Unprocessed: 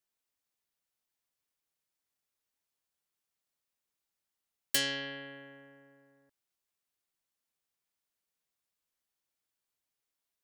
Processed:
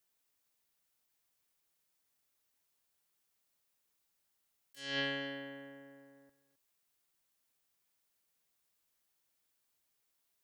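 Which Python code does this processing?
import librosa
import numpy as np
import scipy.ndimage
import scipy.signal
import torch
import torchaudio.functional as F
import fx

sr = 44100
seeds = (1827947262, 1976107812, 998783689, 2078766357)

y = fx.high_shelf(x, sr, hz=11000.0, db=5.0)
y = fx.over_compress(y, sr, threshold_db=-38.0, ratio=-0.5)
y = y + 10.0 ** (-15.5 / 20.0) * np.pad(y, (int(263 * sr / 1000.0), 0))[:len(y)]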